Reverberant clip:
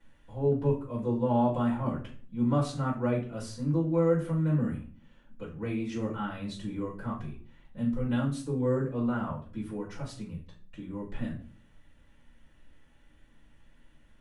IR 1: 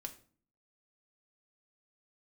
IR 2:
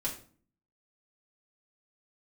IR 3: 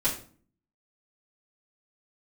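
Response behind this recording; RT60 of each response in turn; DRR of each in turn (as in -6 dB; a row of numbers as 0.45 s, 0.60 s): 3; 0.45 s, 0.45 s, 0.45 s; 4.0 dB, -5.5 dB, -10.5 dB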